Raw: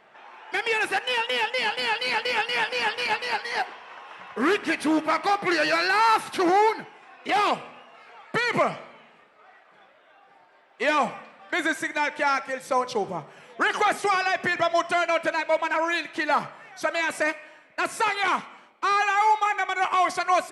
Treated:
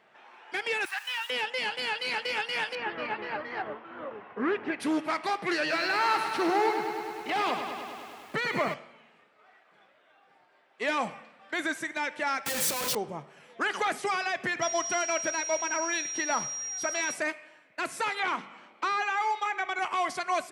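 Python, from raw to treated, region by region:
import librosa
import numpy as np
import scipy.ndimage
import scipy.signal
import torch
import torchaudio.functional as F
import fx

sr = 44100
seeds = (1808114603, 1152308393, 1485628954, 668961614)

y = fx.chain(x, sr, fx.crossing_spikes(level_db=-30.0),
    fx.highpass(hz=940.0, slope=24),
    fx.high_shelf(hz=6700.0, db=-11.5), at=(0.85, 1.3))
y = fx.chain(y, sr, fx.lowpass(hz=1900.0, slope=12),
    fx.echo_pitch(ms=109, semitones=-6, count=2, db_per_echo=-6.0), at=(2.75, 4.8))
y = fx.chain(y, sr, fx.high_shelf(hz=9900.0, db=-10.0),
    fx.echo_crushed(ms=102, feedback_pct=80, bits=8, wet_db=-7.5), at=(5.6, 8.74))
y = fx.chain(y, sr, fx.clip_1bit(),
    fx.high_shelf(hz=5300.0, db=8.0), at=(12.46, 12.95))
y = fx.dmg_tone(y, sr, hz=5700.0, level_db=-27.0, at=(14.61, 17.13), fade=0.02)
y = fx.echo_wet_highpass(y, sr, ms=108, feedback_pct=70, hz=5000.0, wet_db=-6.5, at=(14.61, 17.13), fade=0.02)
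y = fx.chain(y, sr, fx.air_absorb(metres=57.0),
    fx.hum_notches(base_hz=50, count=10),
    fx.band_squash(depth_pct=70), at=(18.19, 19.79))
y = scipy.signal.sosfilt(scipy.signal.butter(2, 72.0, 'highpass', fs=sr, output='sos'), y)
y = fx.peak_eq(y, sr, hz=870.0, db=-3.0, octaves=1.7)
y = y * 10.0 ** (-4.5 / 20.0)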